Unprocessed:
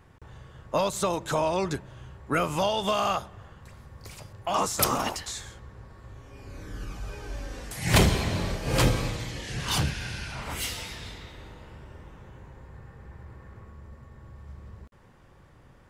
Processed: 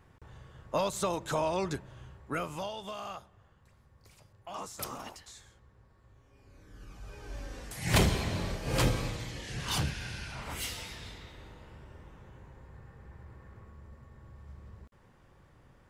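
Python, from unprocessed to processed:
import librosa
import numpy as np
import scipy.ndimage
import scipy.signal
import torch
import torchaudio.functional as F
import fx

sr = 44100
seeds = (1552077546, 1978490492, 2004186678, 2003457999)

y = fx.gain(x, sr, db=fx.line((2.03, -4.5), (2.89, -15.0), (6.67, -15.0), (7.38, -5.0)))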